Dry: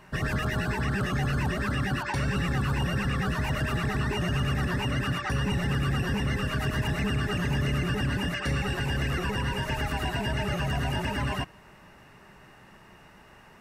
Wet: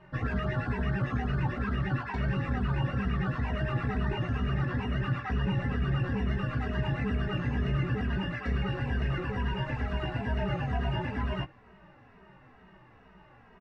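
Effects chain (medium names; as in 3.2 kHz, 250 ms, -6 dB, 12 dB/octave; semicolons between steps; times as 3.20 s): low-pass 4 kHz 12 dB/octave; treble shelf 2.8 kHz -11 dB; doubling 16 ms -7 dB; endless flanger 2.8 ms -2.2 Hz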